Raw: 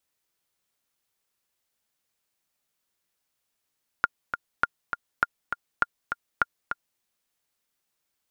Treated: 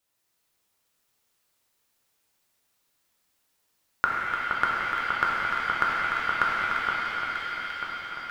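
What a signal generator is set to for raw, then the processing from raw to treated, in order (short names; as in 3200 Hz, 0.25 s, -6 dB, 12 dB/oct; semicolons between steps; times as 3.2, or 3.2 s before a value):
metronome 202 bpm, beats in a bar 2, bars 5, 1410 Hz, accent 7.5 dB -7 dBFS
on a send: echo with dull and thin repeats by turns 0.47 s, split 1500 Hz, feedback 72%, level -4 dB; on the sum: shimmer reverb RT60 3.3 s, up +7 st, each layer -8 dB, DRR -4.5 dB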